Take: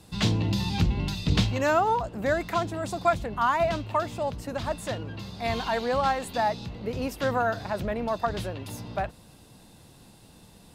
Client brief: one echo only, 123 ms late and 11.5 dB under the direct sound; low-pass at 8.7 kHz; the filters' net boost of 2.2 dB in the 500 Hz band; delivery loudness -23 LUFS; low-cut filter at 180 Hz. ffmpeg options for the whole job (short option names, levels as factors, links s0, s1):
-af "highpass=180,lowpass=8700,equalizer=f=500:t=o:g=3,aecho=1:1:123:0.266,volume=1.58"